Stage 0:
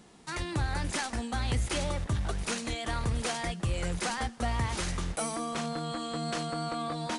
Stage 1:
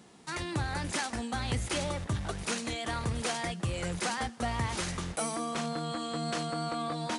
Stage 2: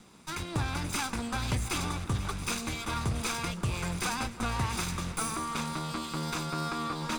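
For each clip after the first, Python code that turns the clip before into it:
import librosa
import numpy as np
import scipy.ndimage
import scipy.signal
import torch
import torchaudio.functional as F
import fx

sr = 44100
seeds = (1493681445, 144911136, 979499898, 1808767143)

y1 = scipy.signal.sosfilt(scipy.signal.butter(2, 82.0, 'highpass', fs=sr, output='sos'), x)
y2 = fx.lower_of_two(y1, sr, delay_ms=0.82)
y2 = fx.echo_split(y2, sr, split_hz=1500.0, low_ms=325, high_ms=487, feedback_pct=52, wet_db=-15)
y2 = F.gain(torch.from_numpy(y2), 2.0).numpy()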